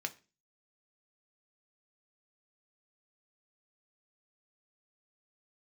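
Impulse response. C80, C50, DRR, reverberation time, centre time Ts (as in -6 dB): 24.5 dB, 19.0 dB, 5.5 dB, 0.30 s, 5 ms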